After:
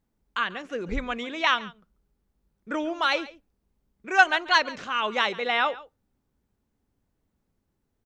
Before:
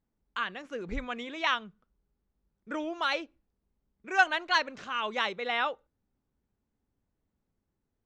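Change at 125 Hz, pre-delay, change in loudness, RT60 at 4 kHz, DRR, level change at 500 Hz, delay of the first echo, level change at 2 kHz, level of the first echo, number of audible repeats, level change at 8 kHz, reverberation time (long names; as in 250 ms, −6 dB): can't be measured, no reverb audible, +5.5 dB, no reverb audible, no reverb audible, +5.5 dB, 140 ms, +5.5 dB, −19.0 dB, 1, can't be measured, no reverb audible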